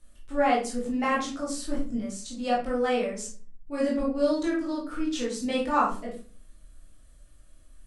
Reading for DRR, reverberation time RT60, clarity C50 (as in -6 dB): -6.0 dB, 0.40 s, 5.5 dB